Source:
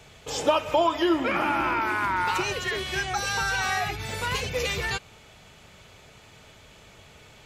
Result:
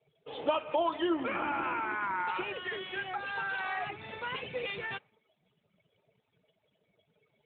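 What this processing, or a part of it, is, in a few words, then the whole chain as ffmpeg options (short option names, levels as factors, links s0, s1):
mobile call with aggressive noise cancelling: -af "highpass=150,afftdn=nr=32:nf=-44,volume=0.447" -ar 8000 -c:a libopencore_amrnb -b:a 12200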